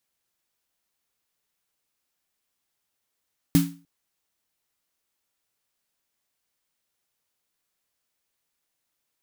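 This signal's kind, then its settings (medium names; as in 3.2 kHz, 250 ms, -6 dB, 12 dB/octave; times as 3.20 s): snare drum length 0.30 s, tones 170 Hz, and 280 Hz, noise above 860 Hz, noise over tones -10.5 dB, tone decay 0.36 s, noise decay 0.32 s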